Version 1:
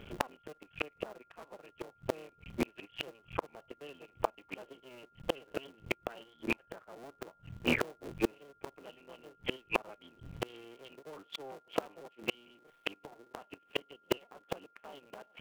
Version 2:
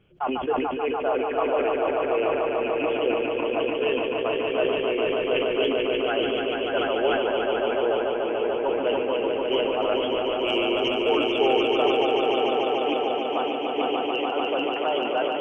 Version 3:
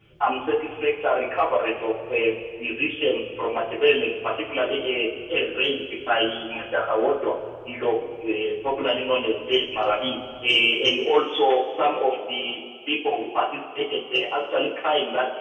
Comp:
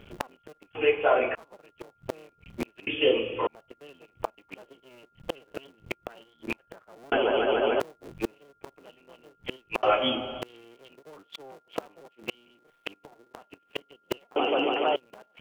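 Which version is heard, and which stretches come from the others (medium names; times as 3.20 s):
1
0.75–1.35 s: from 3
2.87–3.47 s: from 3
7.12–7.80 s: from 2
9.83–10.42 s: from 3
14.36–14.96 s: from 2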